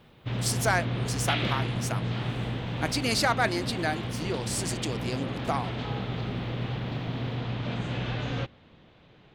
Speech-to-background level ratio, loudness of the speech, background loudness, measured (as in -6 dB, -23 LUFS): 1.5 dB, -30.5 LUFS, -32.0 LUFS